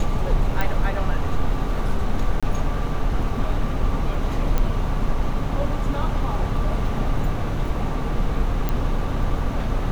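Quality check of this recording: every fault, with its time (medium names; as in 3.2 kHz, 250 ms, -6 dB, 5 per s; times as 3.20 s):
0.61 s: pop
2.40–2.43 s: dropout 26 ms
4.58 s: pop -10 dBFS
8.69 s: pop -10 dBFS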